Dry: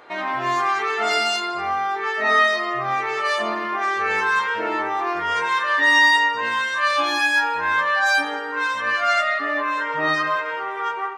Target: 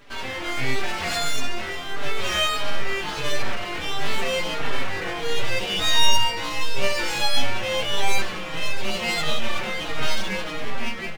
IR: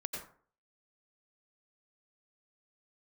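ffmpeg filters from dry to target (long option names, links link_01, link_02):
-filter_complex "[0:a]aeval=exprs='abs(val(0))':channel_layout=same,asplit=2[link_01][link_02];[link_02]adelay=368,lowpass=frequency=870:poles=1,volume=-5.5dB,asplit=2[link_03][link_04];[link_04]adelay=368,lowpass=frequency=870:poles=1,volume=0.54,asplit=2[link_05][link_06];[link_06]adelay=368,lowpass=frequency=870:poles=1,volume=0.54,asplit=2[link_07][link_08];[link_08]adelay=368,lowpass=frequency=870:poles=1,volume=0.54,asplit=2[link_09][link_10];[link_10]adelay=368,lowpass=frequency=870:poles=1,volume=0.54,asplit=2[link_11][link_12];[link_12]adelay=368,lowpass=frequency=870:poles=1,volume=0.54,asplit=2[link_13][link_14];[link_14]adelay=368,lowpass=frequency=870:poles=1,volume=0.54[link_15];[link_03][link_05][link_07][link_09][link_11][link_13][link_15]amix=inputs=7:normalize=0[link_16];[link_01][link_16]amix=inputs=2:normalize=0,asplit=2[link_17][link_18];[link_18]adelay=4.5,afreqshift=-1.5[link_19];[link_17][link_19]amix=inputs=2:normalize=1,volume=1.5dB"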